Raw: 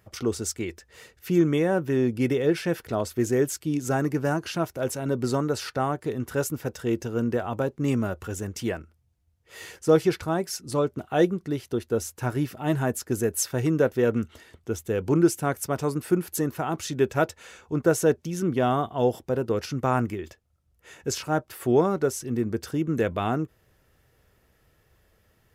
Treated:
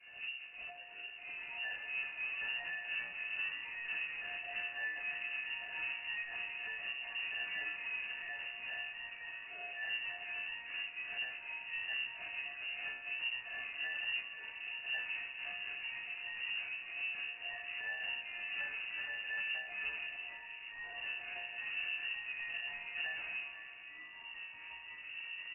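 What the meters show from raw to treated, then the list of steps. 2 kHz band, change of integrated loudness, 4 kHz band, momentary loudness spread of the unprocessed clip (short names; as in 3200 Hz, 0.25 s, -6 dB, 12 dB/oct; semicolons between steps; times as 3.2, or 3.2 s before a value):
+0.5 dB, -13.5 dB, -1.5 dB, 9 LU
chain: spectral swells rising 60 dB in 0.31 s; expander -55 dBFS; de-esser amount 90%; spectral noise reduction 10 dB; compressor 3:1, threshold -32 dBFS, peak gain reduction 13.5 dB; ring modulator 530 Hz; octave resonator C, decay 0.41 s; power-law curve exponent 0.5; echo 0.492 s -14 dB; spring tank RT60 3.8 s, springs 37/58 ms, chirp 45 ms, DRR 9 dB; echoes that change speed 0.732 s, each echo -2 st, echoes 2, each echo -6 dB; inverted band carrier 2800 Hz; gain +2 dB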